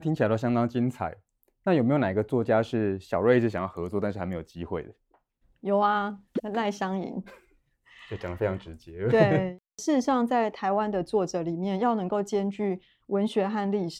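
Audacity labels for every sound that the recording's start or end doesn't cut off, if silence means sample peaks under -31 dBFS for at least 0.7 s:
5.650000	7.200000	sound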